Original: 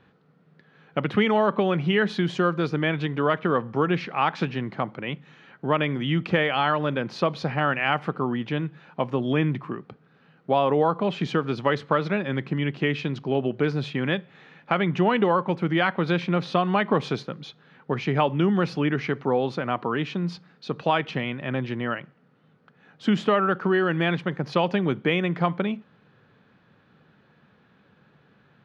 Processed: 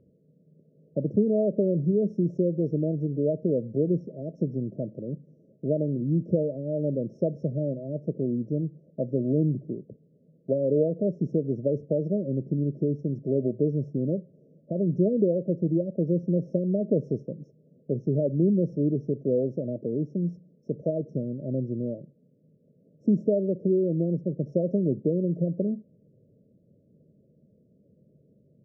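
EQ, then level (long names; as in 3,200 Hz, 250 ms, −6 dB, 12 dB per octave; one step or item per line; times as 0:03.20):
linear-phase brick-wall band-stop 660–5,300 Hz
high-frequency loss of the air 370 metres
0.0 dB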